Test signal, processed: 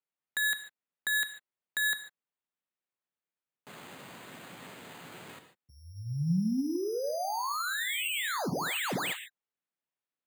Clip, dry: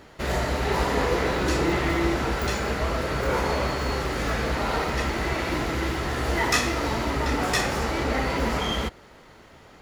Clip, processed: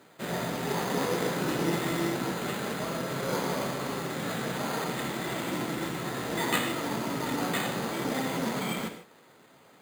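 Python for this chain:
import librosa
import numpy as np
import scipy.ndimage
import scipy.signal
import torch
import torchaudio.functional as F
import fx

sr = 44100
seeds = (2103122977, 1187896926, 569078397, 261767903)

y = np.repeat(x[::8], 8)[:len(x)]
y = scipy.signal.sosfilt(scipy.signal.butter(4, 130.0, 'highpass', fs=sr, output='sos'), y)
y = fx.rev_gated(y, sr, seeds[0], gate_ms=170, shape='flat', drr_db=7.0)
y = fx.cheby_harmonics(y, sr, harmonics=(3,), levels_db=(-18,), full_scale_db=-7.0)
y = fx.dynamic_eq(y, sr, hz=180.0, q=1.3, threshold_db=-47.0, ratio=4.0, max_db=6)
y = y * 10.0 ** (-3.0 / 20.0)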